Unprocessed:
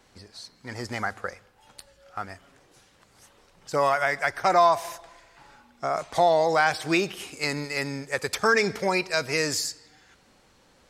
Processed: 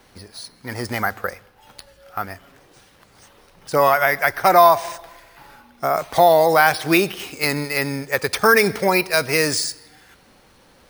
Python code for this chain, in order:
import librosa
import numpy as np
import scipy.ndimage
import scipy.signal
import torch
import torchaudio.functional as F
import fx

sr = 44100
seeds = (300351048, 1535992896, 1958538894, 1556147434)

y = np.repeat(scipy.signal.resample_poly(x, 1, 3), 3)[:len(x)]
y = F.gain(torch.from_numpy(y), 7.0).numpy()